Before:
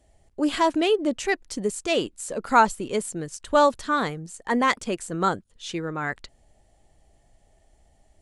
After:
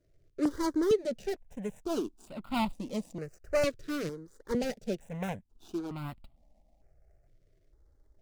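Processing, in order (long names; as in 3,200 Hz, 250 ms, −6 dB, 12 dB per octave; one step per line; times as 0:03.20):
running median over 41 samples
parametric band 5,600 Hz +6 dB 0.99 octaves
step-sequenced phaser 2.2 Hz 220–1,700 Hz
level −2 dB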